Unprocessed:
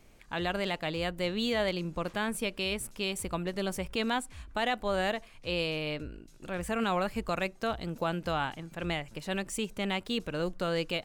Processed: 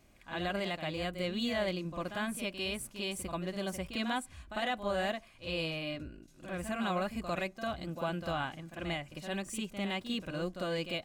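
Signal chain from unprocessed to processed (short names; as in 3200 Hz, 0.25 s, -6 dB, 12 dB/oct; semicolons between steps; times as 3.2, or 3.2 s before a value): notch comb 450 Hz; reverse echo 50 ms -9 dB; gain -3 dB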